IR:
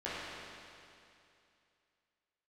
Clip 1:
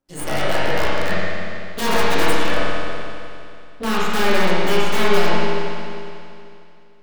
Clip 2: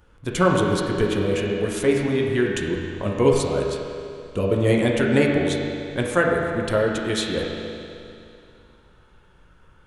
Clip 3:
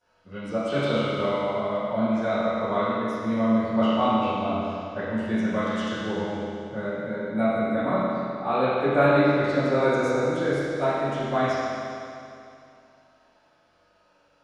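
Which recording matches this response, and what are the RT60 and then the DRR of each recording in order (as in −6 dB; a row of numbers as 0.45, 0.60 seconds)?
1; 2.6, 2.6, 2.6 seconds; −11.5, −2.0, −20.5 decibels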